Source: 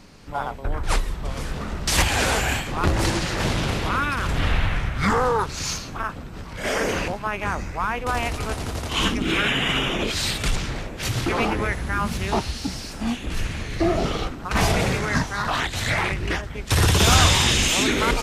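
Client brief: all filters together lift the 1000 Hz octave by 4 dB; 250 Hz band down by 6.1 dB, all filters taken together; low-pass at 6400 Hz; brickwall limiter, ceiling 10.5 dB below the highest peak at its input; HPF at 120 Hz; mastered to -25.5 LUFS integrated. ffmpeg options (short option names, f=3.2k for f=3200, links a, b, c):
-af "highpass=120,lowpass=6.4k,equalizer=f=250:t=o:g=-8.5,equalizer=f=1k:t=o:g=5.5,volume=-0.5dB,alimiter=limit=-14dB:level=0:latency=1"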